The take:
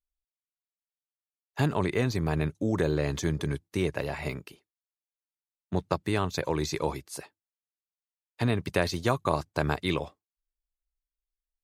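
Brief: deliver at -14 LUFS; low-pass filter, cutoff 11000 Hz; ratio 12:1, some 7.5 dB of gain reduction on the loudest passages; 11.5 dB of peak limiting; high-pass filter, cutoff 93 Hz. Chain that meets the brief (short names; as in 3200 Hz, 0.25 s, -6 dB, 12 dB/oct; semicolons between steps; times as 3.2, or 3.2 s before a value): HPF 93 Hz; LPF 11000 Hz; compressor 12:1, threshold -28 dBFS; gain +24 dB; limiter -1 dBFS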